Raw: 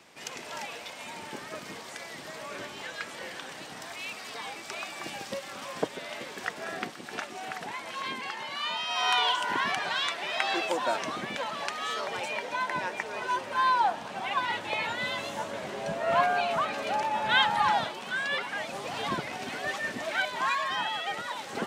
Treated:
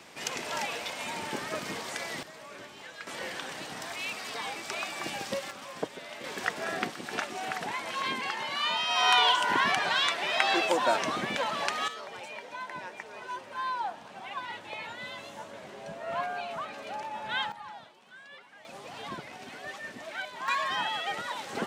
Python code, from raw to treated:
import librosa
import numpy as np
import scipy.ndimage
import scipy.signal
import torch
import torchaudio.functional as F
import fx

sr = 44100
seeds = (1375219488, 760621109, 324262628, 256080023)

y = fx.gain(x, sr, db=fx.steps((0.0, 5.0), (2.23, -6.5), (3.07, 2.5), (5.51, -4.0), (6.24, 3.0), (11.88, -8.5), (17.52, -19.5), (18.65, -8.0), (20.48, 0.0)))